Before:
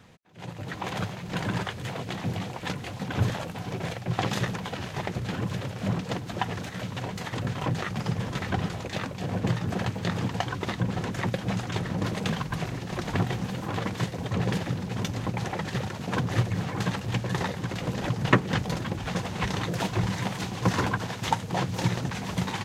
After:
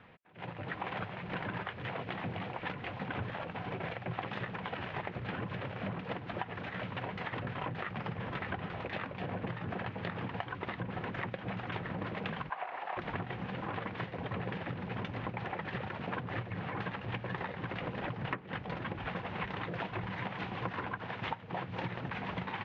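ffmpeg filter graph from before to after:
-filter_complex "[0:a]asettb=1/sr,asplit=3[a][b][c];[a]atrim=end=12.504[d];[b]atrim=start=12.5:end=12.97,asetpts=PTS-STARTPTS,afade=t=in:d=0.004:c=qsin,afade=t=out:st=0.466:d=0.004:c=qsin,acrossover=split=3200[e][f];[f]acompressor=threshold=-55dB:ratio=4:attack=1:release=60[g];[e][g]amix=inputs=2:normalize=0,highpass=f=770:t=q:w=3[h];[c]atrim=start=12.966[i];[d][h]acrossfade=d=0.004:c1=hsin:c2=qsin[j];[j][i]acrossfade=d=0.004:c1=qsin:c2=hsin,lowpass=f=2.8k:w=0.5412,lowpass=f=2.8k:w=1.3066,lowshelf=f=380:g=-8.5,acompressor=threshold=-35dB:ratio=10,volume=1dB"

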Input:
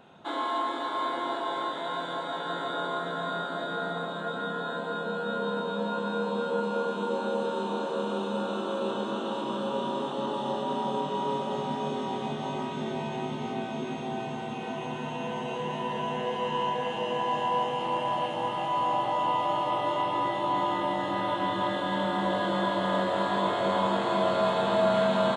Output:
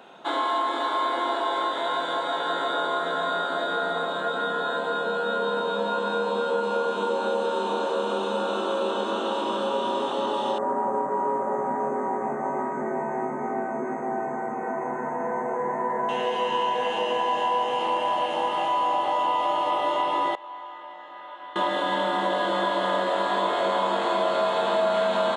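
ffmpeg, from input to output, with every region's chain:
-filter_complex "[0:a]asettb=1/sr,asplit=3[a][b][c];[a]atrim=end=10.584[d];[b]atrim=start=10.58:end=16.09,asetpts=PTS-STARTPTS,afade=t=in:d=0.004:c=qsin,afade=t=out:st=5.506:d=0.004:c=qsin,asuperstop=centerf=3800:order=12:qfactor=0.81,adynamicsmooth=sensitivity=3.5:basefreq=6.2k[e];[c]atrim=start=16.086[f];[d][e]acrossfade=d=0.004:c1=hsin:c2=qsin[g];[g][f]acrossfade=d=0.004:c1=qsin:c2=hsin,asettb=1/sr,asplit=3[h][i][j];[h]atrim=end=20.354[k];[i]atrim=start=20.35:end=21.56,asetpts=PTS-STARTPTS,afade=t=in:d=0.004:c=qsin,afade=t=out:st=1.206:d=0.004:c=qsin,lowpass=1.5k,aderivative[l];[j]atrim=start=21.556[m];[k][l]acrossfade=d=0.004:c1=hsin:c2=qsin[n];[n][m]acrossfade=d=0.004:c1=qsin:c2=hsin,highpass=330,acompressor=threshold=-30dB:ratio=2.5,volume=7.5dB"

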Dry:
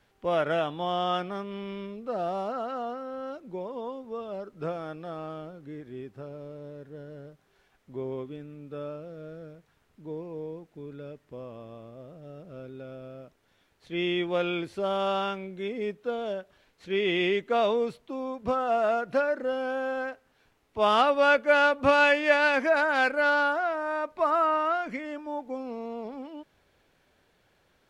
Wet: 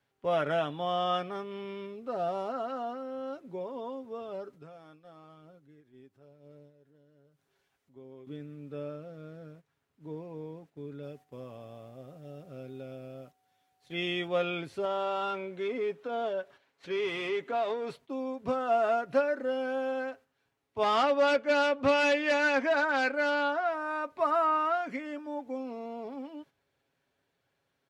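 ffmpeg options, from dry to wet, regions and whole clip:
-filter_complex "[0:a]asettb=1/sr,asplit=3[a][b][c];[a]atrim=end=4.534[d];[b]atrim=start=4.53:end=8.27,asetpts=PTS-STARTPTS,afade=t=in:d=0.004:c=qsin,afade=t=out:st=3.736:d=0.004:c=qsin,acompressor=threshold=-57dB:ratio=2:attack=3.2:release=140:knee=1:detection=peak,highshelf=f=3.9k:g=6.5,aphaser=in_gain=1:out_gain=1:delay=3.9:decay=0.2:speed=1:type=sinusoidal[e];[c]atrim=start=8.266[f];[d][e]acrossfade=d=0.004:c1=hsin:c2=qsin[g];[g][f]acrossfade=d=0.004:c1=qsin:c2=hsin,asettb=1/sr,asplit=3[h][i][j];[h]atrim=end=11.034[k];[i]atrim=start=11.03:end=14.28,asetpts=PTS-STARTPTS,afade=t=in:d=0.004:c=qsin,afade=t=out:st=3.246:d=0.004:c=qsin,aemphasis=mode=production:type=cd,aeval=exprs='val(0)+0.00158*sin(2*PI*750*n/s)':c=same[l];[j]atrim=start=14.276[m];[k][l]acrossfade=d=0.004:c1=hsin:c2=qsin[n];[n][m]acrossfade=d=0.004:c1=qsin:c2=hsin,asettb=1/sr,asplit=3[o][p][q];[o]atrim=end=14.854[r];[p]atrim=start=14.85:end=17.96,asetpts=PTS-STARTPTS,afade=t=in:d=0.004:c=qsin,afade=t=out:st=3.106:d=0.004:c=qsin,highshelf=f=4.5k:g=7.5,acompressor=threshold=-29dB:ratio=3:attack=3.2:release=140:knee=1:detection=peak,asplit=2[s][t];[t]highpass=f=720:p=1,volume=15dB,asoftclip=type=tanh:threshold=-19dB[u];[s][u]amix=inputs=2:normalize=0,lowpass=f=1.3k:p=1,volume=-6dB[v];[q]atrim=start=17.956[w];[r][v]acrossfade=d=0.004:c1=hsin:c2=qsin[x];[x][w]acrossfade=d=0.004:c1=qsin:c2=hsin,asettb=1/sr,asplit=3[y][z][aa];[y]atrim=end=20.834[ab];[z]atrim=start=20.83:end=23.67,asetpts=PTS-STARTPTS,afade=t=in:d=0.004:c=qsin,afade=t=out:st=2.836:d=0.004:c=qsin,asoftclip=type=hard:threshold=-18.5dB,lowpass=6.2k[ac];[aa]atrim=start=23.666[ad];[ab][ac]acrossfade=d=0.004:c1=hsin:c2=qsin[ae];[ae][ad]acrossfade=d=0.004:c1=qsin:c2=hsin,highpass=f=58:w=0.5412,highpass=f=58:w=1.3066,agate=range=-9dB:threshold=-50dB:ratio=16:detection=peak,aecho=1:1:7.3:0.42,volume=-3dB"

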